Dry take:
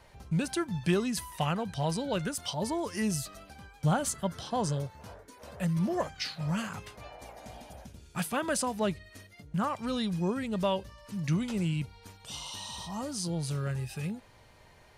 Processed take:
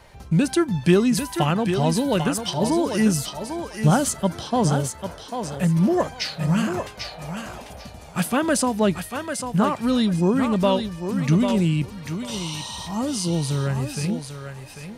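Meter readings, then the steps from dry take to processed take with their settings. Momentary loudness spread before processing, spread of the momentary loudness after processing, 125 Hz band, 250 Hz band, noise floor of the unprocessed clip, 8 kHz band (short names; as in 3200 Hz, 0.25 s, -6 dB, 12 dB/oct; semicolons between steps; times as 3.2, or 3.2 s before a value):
18 LU, 13 LU, +9.5 dB, +11.5 dB, -57 dBFS, +8.5 dB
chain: thinning echo 0.795 s, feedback 21%, high-pass 230 Hz, level -6 dB; dynamic EQ 280 Hz, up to +6 dB, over -43 dBFS, Q 1.3; gain +7.5 dB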